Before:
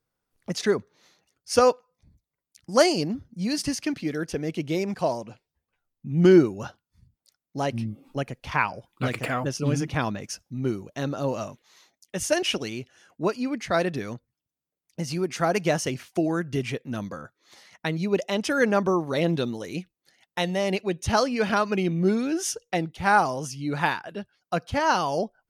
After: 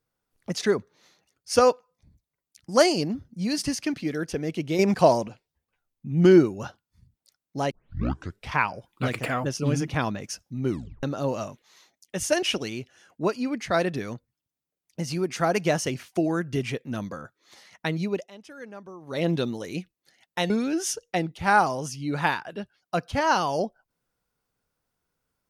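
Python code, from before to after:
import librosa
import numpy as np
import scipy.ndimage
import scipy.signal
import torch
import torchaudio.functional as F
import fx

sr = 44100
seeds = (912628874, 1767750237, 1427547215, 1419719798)

y = fx.edit(x, sr, fx.clip_gain(start_s=4.79, length_s=0.49, db=7.5),
    fx.tape_start(start_s=7.71, length_s=0.82),
    fx.tape_stop(start_s=10.7, length_s=0.33),
    fx.fade_down_up(start_s=18.01, length_s=1.28, db=-20.0, fade_s=0.29),
    fx.cut(start_s=20.5, length_s=1.59), tone=tone)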